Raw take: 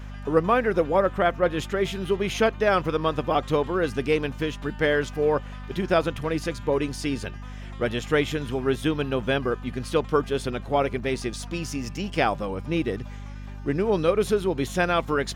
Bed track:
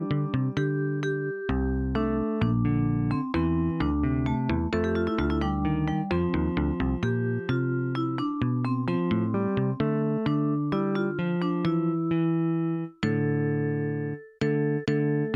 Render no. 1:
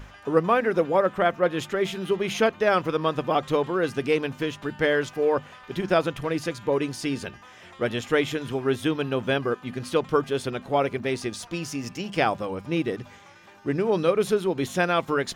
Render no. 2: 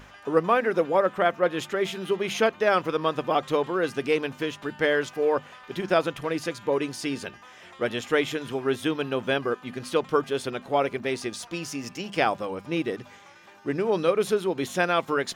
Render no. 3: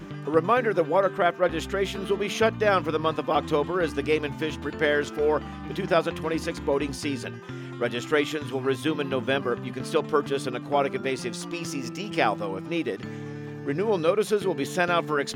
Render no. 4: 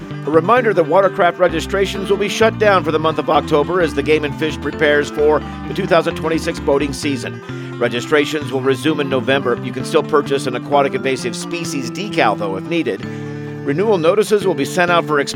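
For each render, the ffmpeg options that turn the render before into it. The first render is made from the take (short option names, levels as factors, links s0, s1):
-af "bandreject=f=50:t=h:w=6,bandreject=f=100:t=h:w=6,bandreject=f=150:t=h:w=6,bandreject=f=200:t=h:w=6,bandreject=f=250:t=h:w=6"
-af "lowshelf=f=130:g=-11.5"
-filter_complex "[1:a]volume=0.282[s0];[0:a][s0]amix=inputs=2:normalize=0"
-af "volume=3.16,alimiter=limit=0.891:level=0:latency=1"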